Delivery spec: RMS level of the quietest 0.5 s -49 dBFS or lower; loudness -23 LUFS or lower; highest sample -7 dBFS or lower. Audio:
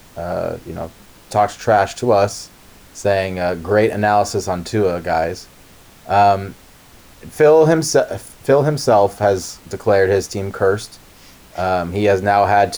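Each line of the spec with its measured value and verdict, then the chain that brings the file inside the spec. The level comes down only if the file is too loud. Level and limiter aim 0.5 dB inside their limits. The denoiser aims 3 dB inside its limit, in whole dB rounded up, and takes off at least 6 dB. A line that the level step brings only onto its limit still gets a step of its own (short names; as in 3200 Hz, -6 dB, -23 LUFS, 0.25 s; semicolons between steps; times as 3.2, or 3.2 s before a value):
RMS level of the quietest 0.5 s -45 dBFS: fail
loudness -17.0 LUFS: fail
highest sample -3.0 dBFS: fail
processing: gain -6.5 dB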